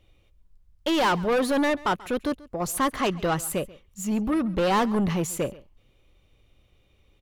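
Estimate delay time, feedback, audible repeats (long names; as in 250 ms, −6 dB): 136 ms, repeats not evenly spaced, 1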